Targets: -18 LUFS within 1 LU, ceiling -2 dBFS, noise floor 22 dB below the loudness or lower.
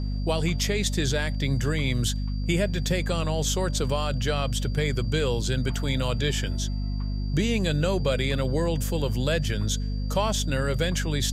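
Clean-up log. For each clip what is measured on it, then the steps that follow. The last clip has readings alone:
hum 50 Hz; harmonics up to 250 Hz; hum level -25 dBFS; steady tone 4700 Hz; tone level -47 dBFS; loudness -26.5 LUFS; peak -11.5 dBFS; loudness target -18.0 LUFS
-> de-hum 50 Hz, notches 5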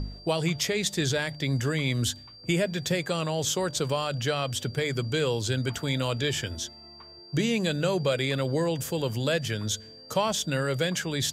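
hum none; steady tone 4700 Hz; tone level -47 dBFS
-> notch 4700 Hz, Q 30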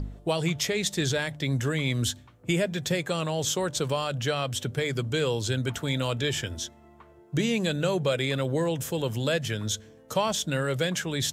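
steady tone none; loudness -28.0 LUFS; peak -13.0 dBFS; loudness target -18.0 LUFS
-> gain +10 dB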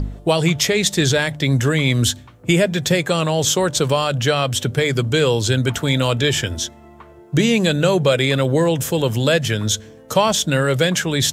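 loudness -18.0 LUFS; peak -3.0 dBFS; noise floor -44 dBFS

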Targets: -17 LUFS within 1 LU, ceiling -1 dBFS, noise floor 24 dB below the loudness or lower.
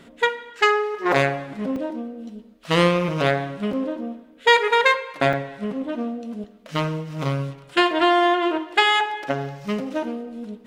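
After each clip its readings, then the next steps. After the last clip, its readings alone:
dropouts 4; longest dropout 2.7 ms; loudness -22.0 LUFS; peak -2.0 dBFS; loudness target -17.0 LUFS
-> interpolate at 1.76/3.73/5.33/6.44, 2.7 ms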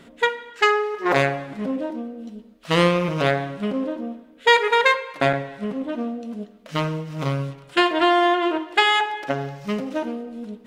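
dropouts 0; loudness -22.0 LUFS; peak -2.0 dBFS; loudness target -17.0 LUFS
-> gain +5 dB; limiter -1 dBFS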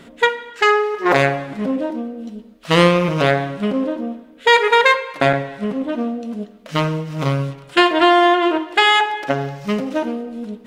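loudness -17.5 LUFS; peak -1.0 dBFS; noise floor -44 dBFS

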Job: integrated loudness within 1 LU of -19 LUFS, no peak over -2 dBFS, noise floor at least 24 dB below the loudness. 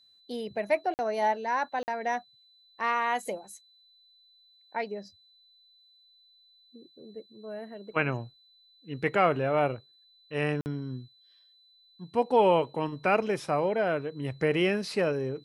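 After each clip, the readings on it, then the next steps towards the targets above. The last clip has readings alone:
dropouts 3; longest dropout 49 ms; steady tone 4000 Hz; tone level -59 dBFS; loudness -29.0 LUFS; peak -10.0 dBFS; loudness target -19.0 LUFS
-> interpolate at 0.94/1.83/10.61, 49 ms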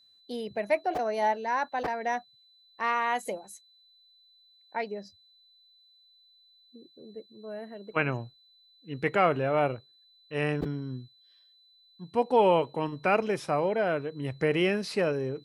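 dropouts 0; steady tone 4000 Hz; tone level -59 dBFS
-> notch 4000 Hz, Q 30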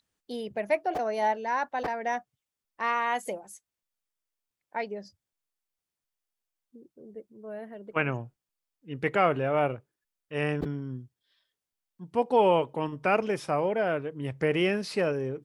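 steady tone none; loudness -29.0 LUFS; peak -10.0 dBFS; loudness target -19.0 LUFS
-> gain +10 dB; limiter -2 dBFS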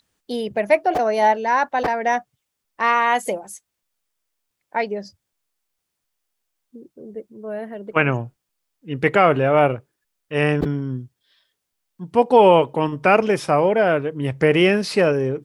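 loudness -19.0 LUFS; peak -2.0 dBFS; noise floor -79 dBFS

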